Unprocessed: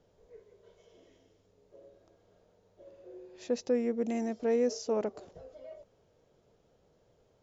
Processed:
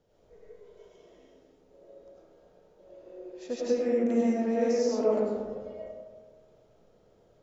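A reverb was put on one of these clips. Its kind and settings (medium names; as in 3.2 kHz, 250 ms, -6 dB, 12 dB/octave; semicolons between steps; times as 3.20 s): algorithmic reverb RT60 1.6 s, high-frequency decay 0.35×, pre-delay 60 ms, DRR -7 dB; trim -3.5 dB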